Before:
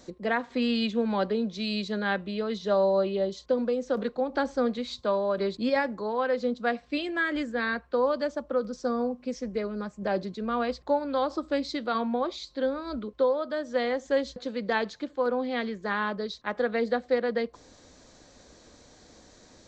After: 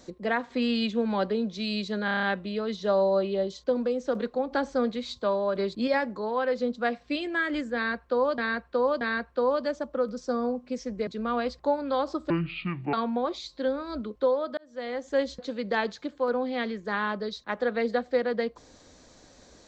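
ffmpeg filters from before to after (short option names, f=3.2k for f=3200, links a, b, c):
-filter_complex "[0:a]asplit=13[a][b][c][d][e][f][g][h][i][j][k][l][m];[a]atrim=end=2.082[n];[b]atrim=start=2.048:end=2.082[o];[c]atrim=start=2.048:end=2.082[p];[d]atrim=start=2.048:end=2.082[q];[e]atrim=start=2.048:end=2.082[r];[f]atrim=start=2.048:end=2.082[s];[g]atrim=start=2.048:end=8.202[t];[h]atrim=start=7.568:end=8.202[u];[i]atrim=start=7.568:end=9.632[v];[j]atrim=start=10.298:end=11.534[w];[k]atrim=start=11.53:end=11.91,asetpts=PTS-STARTPTS,asetrate=26460,aresample=44100[x];[l]atrim=start=11.906:end=13.55,asetpts=PTS-STARTPTS,afade=t=out:st=1.64:d=0.004:c=hsin[y];[m]atrim=start=13.55,asetpts=PTS-STARTPTS,afade=t=in:d=0.61[z];[n][o]acrossfade=d=0.004:c1=hsin:c2=hsin[aa];[aa][p]acrossfade=d=0.004:c1=hsin:c2=hsin[ab];[ab][q]acrossfade=d=0.004:c1=hsin:c2=hsin[ac];[ac][r]acrossfade=d=0.004:c1=hsin:c2=hsin[ad];[ad][s]acrossfade=d=0.004:c1=hsin:c2=hsin[ae];[ae][t]acrossfade=d=0.004:c1=hsin:c2=hsin[af];[af][u]acrossfade=d=0.004:c1=hsin:c2=hsin[ag];[ag][v]acrossfade=d=0.004:c1=hsin:c2=hsin[ah];[ah][w]acrossfade=d=0.004:c1=hsin:c2=hsin[ai];[ai][x]acrossfade=d=0.004:c1=hsin:c2=hsin[aj];[y][z]concat=n=2:v=0:a=1[ak];[aj][ak]acrossfade=d=0.004:c1=hsin:c2=hsin"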